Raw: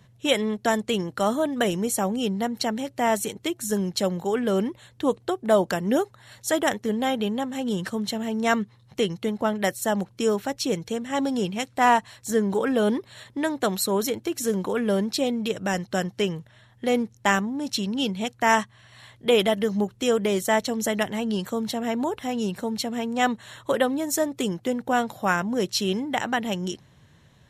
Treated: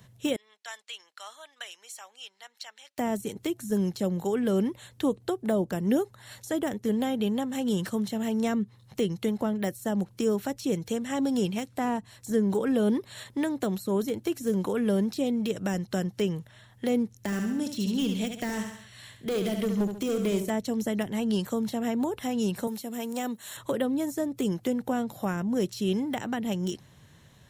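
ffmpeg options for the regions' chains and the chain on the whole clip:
-filter_complex "[0:a]asettb=1/sr,asplit=3[a][b][c];[a]atrim=end=0.364[d];[b]atrim=start=0.36:end=2.98,asetpts=PTS-STARTPTS,afade=t=in:d=0.004:c=qsin,afade=t=out:st=2.616:d=0.004:c=qsin,highpass=760,lowpass=3.4k,aderivative[e];[c]atrim=start=2.976[f];[d][e]acrossfade=d=0.004:c1=hsin:c2=qsin[g];[g][f]acrossfade=d=0.004:c1=qsin:c2=hsin,asettb=1/sr,asplit=3[h][i][j];[h]atrim=end=17.164[k];[i]atrim=start=17.16:end=20.5,asetpts=PTS-STARTPTS,afade=t=in:d=0.004:c=qsin,afade=t=out:st=3.336:d=0.004:c=qsin,equalizer=f=900:t=o:w=1:g=-7.5,asoftclip=type=hard:threshold=-21.5dB,aecho=1:1:69|138|207|276:0.398|0.155|0.0606|0.0236,atrim=end_sample=147294[l];[j]atrim=start=20.496[m];[k][l]acrossfade=d=0.004:c1=hsin:c2=qsin[n];[n][m]acrossfade=d=0.004:c1=qsin:c2=hsin,asettb=1/sr,asplit=3[o][p][q];[o]atrim=end=22.674[r];[p]atrim=start=22.67:end=23.57,asetpts=PTS-STARTPTS,afade=t=in:d=0.004:c=qsin,afade=t=out:st=0.896:d=0.004:c=qsin,highpass=130,aemphasis=mode=production:type=bsi[s];[q]atrim=start=23.566[t];[r][s]acrossfade=d=0.004:c1=hsin:c2=qsin[u];[u][t]acrossfade=d=0.004:c1=qsin:c2=hsin,acrossover=split=420[v][w];[w]acompressor=threshold=-33dB:ratio=8[x];[v][x]amix=inputs=2:normalize=0,highshelf=f=7.7k:g=9.5,deesser=0.75"

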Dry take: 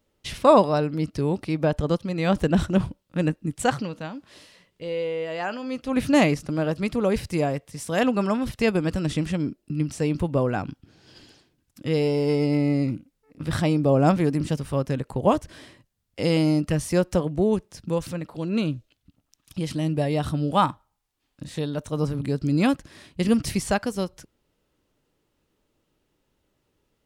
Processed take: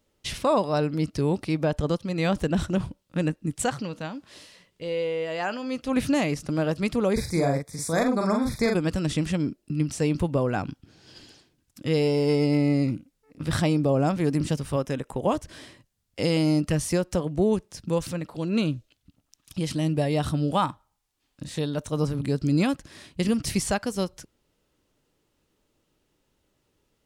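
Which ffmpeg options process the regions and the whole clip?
-filter_complex "[0:a]asettb=1/sr,asplit=3[a][b][c];[a]atrim=end=7.134[d];[b]atrim=start=7.13:end=8.75,asetpts=PTS-STARTPTS,afade=t=in:d=0.004:c=qsin,afade=t=out:st=1.616:d=0.004:c=qsin,asplit=2[e][f];[f]adelay=43,volume=-3.5dB[g];[e][g]amix=inputs=2:normalize=0,atrim=end_sample=71442,aeval=exprs='clip(val(0),-1,0.141)':c=same,asuperstop=centerf=2900:order=12:qfactor=3.1[h];[c]atrim=start=8.746[i];[d][h]acrossfade=d=0.004:c1=hsin:c2=qsin[j];[j][i]acrossfade=d=0.004:c1=qsin:c2=hsin,asettb=1/sr,asplit=3[k][l][m];[k]atrim=end=14.764[n];[l]atrim=start=14.76:end=15.27,asetpts=PTS-STARTPTS,afade=t=in:d=0.004:c=qsin,afade=t=out:st=0.506:d=0.004:c=qsin,asuperstop=centerf=4400:order=4:qfactor=5.9,equalizer=f=100:w=0.74:g=-7[o];[m]atrim=start=15.266[p];[n][o]acrossfade=d=0.004:c1=hsin:c2=qsin[q];[q][p]acrossfade=d=0.004:c1=qsin:c2=hsin,alimiter=limit=-12.5dB:level=0:latency=1:release=257,equalizer=f=7k:w=0.61:g=3.5"

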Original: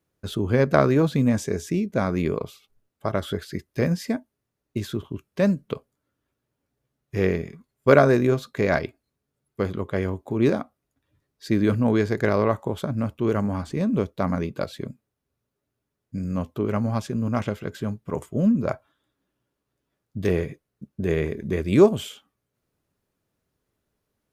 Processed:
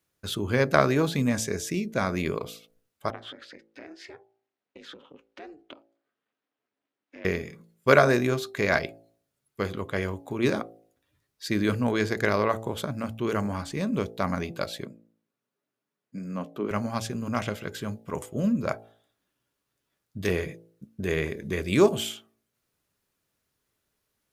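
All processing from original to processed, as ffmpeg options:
-filter_complex "[0:a]asettb=1/sr,asplit=3[a][b][c];[a]atrim=end=3.104[d];[b]atrim=start=3.1:end=7.25,asetpts=PTS-STARTPTS,afade=t=in:d=0.004:c=qsin,afade=t=out:st=4.146:d=0.004:c=qsin,acompressor=threshold=-33dB:ratio=6:attack=3.2:release=140:knee=1:detection=peak,aeval=exprs='val(0)*sin(2*PI*150*n/s)':c=same,highpass=230,lowpass=3.2k[e];[c]atrim=start=7.246[f];[d][e]acrossfade=d=0.004:c1=hsin:c2=qsin[g];[g][f]acrossfade=d=0.004:c1=qsin:c2=hsin,asettb=1/sr,asplit=3[h][i][j];[h]atrim=end=14.854[k];[i]atrim=start=14.85:end=16.71,asetpts=PTS-STARTPTS,afade=t=in:d=0.004:c=qsin,afade=t=out:st=1.856:d=0.004:c=qsin,highpass=f=160:w=0.5412,highpass=f=160:w=1.3066,highshelf=f=3k:g=-10.5[l];[j]atrim=start=16.706[m];[k][l]acrossfade=d=0.004:c1=hsin:c2=qsin[n];[n][m]acrossfade=d=0.004:c1=qsin:c2=hsin,tiltshelf=f=1.1k:g=-5,bandreject=f=55.75:t=h:w=4,bandreject=f=111.5:t=h:w=4,bandreject=f=167.25:t=h:w=4,bandreject=f=223:t=h:w=4,bandreject=f=278.75:t=h:w=4,bandreject=f=334.5:t=h:w=4,bandreject=f=390.25:t=h:w=4,bandreject=f=446:t=h:w=4,bandreject=f=501.75:t=h:w=4,bandreject=f=557.5:t=h:w=4,bandreject=f=613.25:t=h:w=4,bandreject=f=669:t=h:w=4,bandreject=f=724.75:t=h:w=4,bandreject=f=780.5:t=h:w=4,bandreject=f=836.25:t=h:w=4"

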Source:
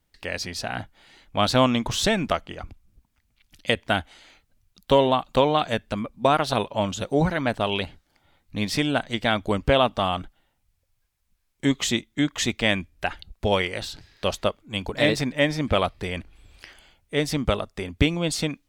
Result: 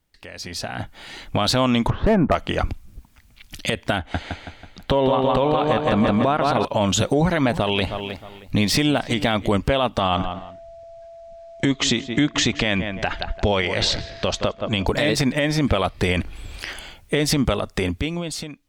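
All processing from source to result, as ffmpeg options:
-filter_complex "[0:a]asettb=1/sr,asplit=3[a][b][c];[a]atrim=end=1.904[d];[b]atrim=start=1.9:end=2.35,asetpts=PTS-STARTPTS,afade=t=in:d=0.004:c=qsin,afade=t=out:st=0.446:d=0.004:c=qsin,lowpass=f=1.4k:w=0.5412,lowpass=f=1.4k:w=1.3066,asoftclip=type=hard:threshold=-17.5dB[e];[c]atrim=start=2.346[f];[d][e]acrossfade=d=0.004:c1=hsin:c2=qsin[g];[g][f]acrossfade=d=0.004:c1=qsin:c2=hsin,asettb=1/sr,asplit=3[h][i][j];[h]atrim=end=3.984[k];[i]atrim=start=3.98:end=6.65,asetpts=PTS-STARTPTS,afade=t=in:d=0.004:c=qsin,afade=t=out:st=2.666:d=0.004:c=qsin,lowpass=f=2.2k:p=1,aecho=1:1:163|326|489|652|815|978:0.562|0.264|0.124|0.0584|0.0274|0.0129,atrim=end_sample=117747[l];[j]atrim=start=6.646[m];[k][l]acrossfade=d=0.004:c1=hsin:c2=qsin[n];[n][m]acrossfade=d=0.004:c1=qsin:c2=hsin,asettb=1/sr,asplit=3[o][p][q];[o]atrim=end=7.174[r];[p]atrim=start=7.17:end=9.49,asetpts=PTS-STARTPTS,afade=t=in:d=0.004:c=qsin,afade=t=out:st=2.316:d=0.004:c=qsin,deesser=0.6,equalizer=f=1.5k:t=o:w=0.25:g=-4,asplit=2[s][t];[t]adelay=312,lowpass=f=3.3k:p=1,volume=-19dB,asplit=2[u][v];[v]adelay=312,lowpass=f=3.3k:p=1,volume=0.24[w];[s][u][w]amix=inputs=3:normalize=0,atrim=end_sample=102312[x];[q]atrim=start=9.486[y];[r][x]acrossfade=d=0.004:c1=hsin:c2=qsin[z];[z][y]acrossfade=d=0.004:c1=qsin:c2=hsin,asettb=1/sr,asplit=3[aa][ab][ac];[aa]atrim=end=10.004[ad];[ab]atrim=start=10:end=14.87,asetpts=PTS-STARTPTS,afade=t=in:d=0.004:c=qsin,afade=t=out:st=4.866:d=0.004:c=qsin,lowpass=f=6.8k:w=0.5412,lowpass=f=6.8k:w=1.3066,aeval=exprs='val(0)+0.00158*sin(2*PI*670*n/s)':c=same,asplit=2[ae][af];[af]adelay=170,lowpass=f=2.3k:p=1,volume=-17dB,asplit=2[ag][ah];[ah]adelay=170,lowpass=f=2.3k:p=1,volume=0.25[ai];[ae][ag][ai]amix=inputs=3:normalize=0,atrim=end_sample=214767[aj];[ac]atrim=start=14.866[ak];[ad][aj]acrossfade=d=0.004:c1=hsin:c2=qsin[al];[al][ak]acrossfade=d=0.004:c1=qsin:c2=hsin,acompressor=threshold=-29dB:ratio=6,alimiter=level_in=1.5dB:limit=-24dB:level=0:latency=1:release=46,volume=-1.5dB,dynaudnorm=f=150:g=11:m=16dB"

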